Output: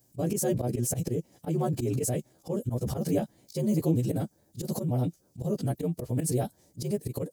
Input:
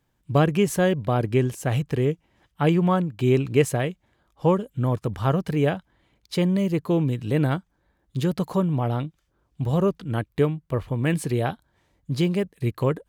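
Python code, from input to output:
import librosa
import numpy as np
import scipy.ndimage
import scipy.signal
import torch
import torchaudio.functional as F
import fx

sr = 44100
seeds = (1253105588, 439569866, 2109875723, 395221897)

p1 = fx.frame_reverse(x, sr, frame_ms=49.0)
p2 = scipy.signal.sosfilt(scipy.signal.butter(2, 110.0, 'highpass', fs=sr, output='sos'), p1)
p3 = fx.high_shelf(p2, sr, hz=3400.0, db=11.5)
p4 = fx.auto_swell(p3, sr, attack_ms=340.0)
p5 = fx.over_compress(p4, sr, threshold_db=-37.0, ratio=-1.0)
p6 = p4 + (p5 * librosa.db_to_amplitude(2.0))
p7 = fx.quant_dither(p6, sr, seeds[0], bits=12, dither='none')
p8 = fx.stretch_vocoder(p7, sr, factor=0.56)
y = fx.band_shelf(p8, sr, hz=1900.0, db=-14.0, octaves=2.3)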